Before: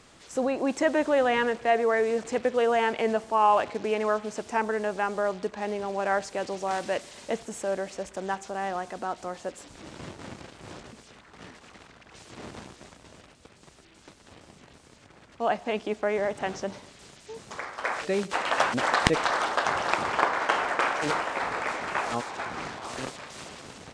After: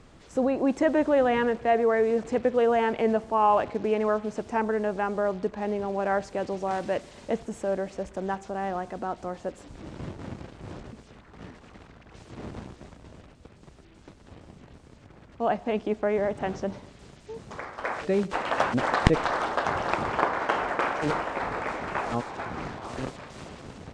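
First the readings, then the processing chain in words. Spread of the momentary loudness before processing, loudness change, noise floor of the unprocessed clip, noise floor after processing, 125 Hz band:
19 LU, +0.5 dB, -55 dBFS, -52 dBFS, +6.0 dB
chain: tilt -2.5 dB/oct; gain -1 dB

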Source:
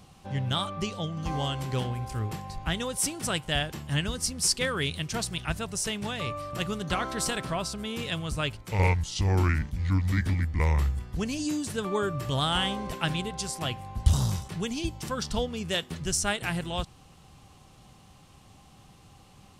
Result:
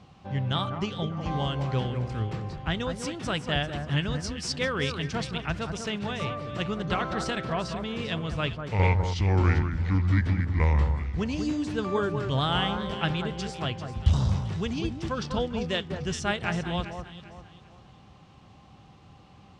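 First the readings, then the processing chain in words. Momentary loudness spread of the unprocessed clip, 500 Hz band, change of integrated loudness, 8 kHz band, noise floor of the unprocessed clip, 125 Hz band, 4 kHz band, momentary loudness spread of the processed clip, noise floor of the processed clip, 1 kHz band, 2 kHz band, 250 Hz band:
8 LU, +2.0 dB, +1.0 dB, -11.0 dB, -55 dBFS, +2.0 dB, -2.0 dB, 8 LU, -53 dBFS, +1.5 dB, +0.5 dB, +2.5 dB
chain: HPF 54 Hz; air absorption 150 m; echo with dull and thin repeats by turns 0.197 s, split 1600 Hz, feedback 56%, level -6.5 dB; gain +1.5 dB

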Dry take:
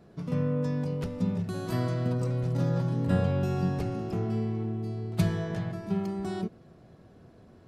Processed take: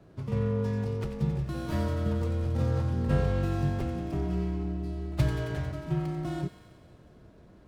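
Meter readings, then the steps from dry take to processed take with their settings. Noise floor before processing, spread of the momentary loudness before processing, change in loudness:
-55 dBFS, 6 LU, -0.5 dB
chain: thin delay 90 ms, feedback 73%, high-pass 1500 Hz, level -9 dB; frequency shift -39 Hz; running maximum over 5 samples

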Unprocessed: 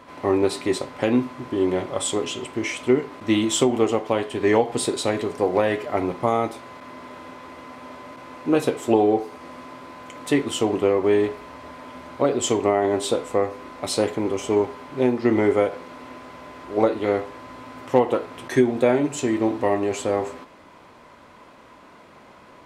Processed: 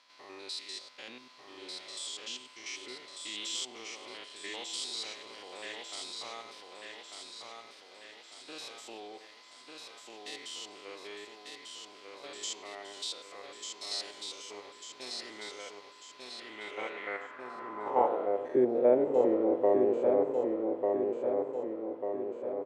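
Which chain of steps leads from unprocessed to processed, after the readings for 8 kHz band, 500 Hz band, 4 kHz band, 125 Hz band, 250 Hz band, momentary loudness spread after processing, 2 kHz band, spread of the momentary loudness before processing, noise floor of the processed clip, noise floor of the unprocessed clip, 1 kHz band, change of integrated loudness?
-11.0 dB, -10.0 dB, -5.0 dB, -24.5 dB, -15.0 dB, 21 LU, -12.0 dB, 20 LU, -55 dBFS, -48 dBFS, -11.0 dB, -11.0 dB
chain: stepped spectrum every 0.1 s; feedback echo 1.195 s, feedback 54%, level -4 dB; band-pass sweep 4600 Hz -> 500 Hz, 16.15–18.58

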